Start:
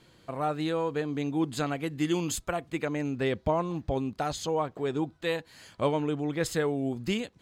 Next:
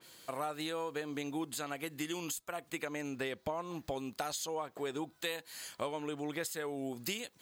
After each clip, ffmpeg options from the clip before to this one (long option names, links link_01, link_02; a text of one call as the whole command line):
ffmpeg -i in.wav -af "aemphasis=mode=production:type=riaa,acompressor=threshold=-34dB:ratio=6,adynamicequalizer=threshold=0.00178:dfrequency=2800:dqfactor=0.7:tfrequency=2800:tqfactor=0.7:attack=5:release=100:ratio=0.375:range=2.5:mode=cutabove:tftype=highshelf" out.wav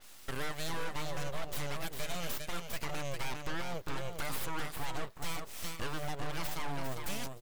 ffmpeg -i in.wav -af "aeval=exprs='abs(val(0))':channel_layout=same,aecho=1:1:401:0.422,volume=33dB,asoftclip=hard,volume=-33dB,volume=5dB" out.wav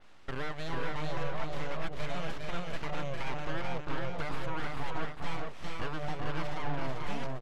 ffmpeg -i in.wav -filter_complex "[0:a]adynamicsmooth=sensitivity=4:basefreq=2500,asplit=2[link_01][link_02];[link_02]aecho=0:1:440:0.708[link_03];[link_01][link_03]amix=inputs=2:normalize=0,volume=2dB" out.wav